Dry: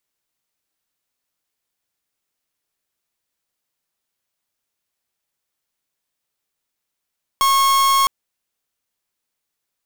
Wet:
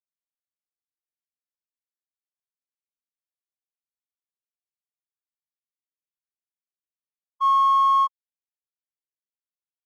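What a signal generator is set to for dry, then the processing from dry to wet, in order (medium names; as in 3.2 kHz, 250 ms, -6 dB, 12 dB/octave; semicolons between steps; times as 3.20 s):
pulse 1.09 kHz, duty 45% -15 dBFS 0.66 s
spectral contrast expander 2.5:1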